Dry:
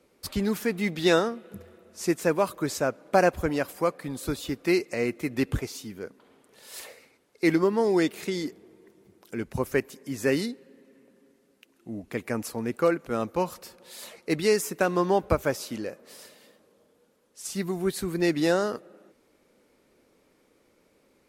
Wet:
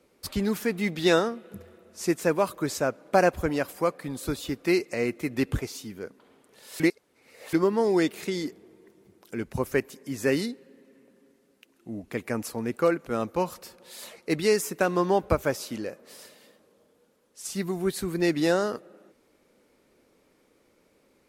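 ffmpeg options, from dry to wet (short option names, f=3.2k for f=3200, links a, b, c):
-filter_complex "[0:a]asplit=3[a][b][c];[a]atrim=end=6.802[d];[b]atrim=start=6.798:end=7.532,asetpts=PTS-STARTPTS,areverse[e];[c]atrim=start=7.528[f];[d][e]acrossfade=d=0.004:c1=hsin:c2=hsin[g];[g][f]acrossfade=d=0.004:c1=hsin:c2=hsin"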